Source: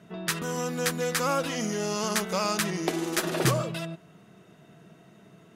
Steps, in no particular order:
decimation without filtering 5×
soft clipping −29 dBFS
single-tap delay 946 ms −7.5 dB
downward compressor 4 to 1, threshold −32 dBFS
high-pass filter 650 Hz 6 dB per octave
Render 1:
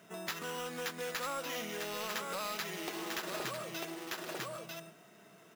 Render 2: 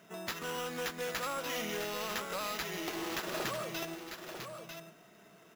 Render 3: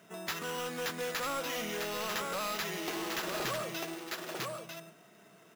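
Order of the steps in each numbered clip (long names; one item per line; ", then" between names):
decimation without filtering, then single-tap delay, then downward compressor, then high-pass filter, then soft clipping
high-pass filter, then downward compressor, then soft clipping, then single-tap delay, then decimation without filtering
single-tap delay, then decimation without filtering, then high-pass filter, then soft clipping, then downward compressor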